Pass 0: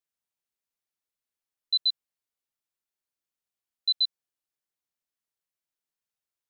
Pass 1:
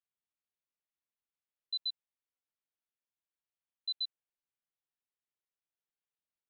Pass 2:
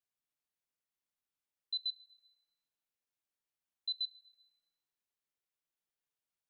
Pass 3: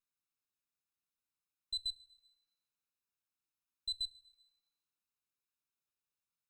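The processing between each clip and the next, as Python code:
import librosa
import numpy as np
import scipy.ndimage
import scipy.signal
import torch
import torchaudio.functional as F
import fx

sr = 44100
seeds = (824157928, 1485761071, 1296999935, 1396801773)

y1 = scipy.signal.sosfilt(scipy.signal.butter(6, 3800.0, 'lowpass', fs=sr, output='sos'), x)
y1 = y1 * librosa.db_to_amplitude(-6.5)
y2 = fx.room_shoebox(y1, sr, seeds[0], volume_m3=2200.0, walls='mixed', distance_m=0.37)
y3 = fx.lower_of_two(y2, sr, delay_ms=0.77)
y3 = y3 * librosa.db_to_amplitude(-1.0)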